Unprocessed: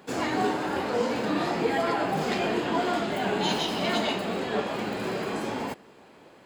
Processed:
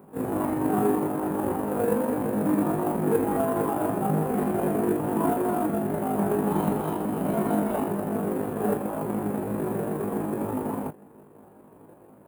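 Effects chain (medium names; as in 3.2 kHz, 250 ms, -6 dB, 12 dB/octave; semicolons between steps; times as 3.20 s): bass shelf 460 Hz +9 dB; in parallel at +1 dB: sample-rate reducer 2.1 kHz, jitter 20%; on the sum: FFT filter 570 Hz 0 dB, 980 Hz +3 dB, 5.6 kHz -26 dB, 9.8 kHz +3 dB; granular stretch 1.9×, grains 82 ms; high-pass 64 Hz; trim -7.5 dB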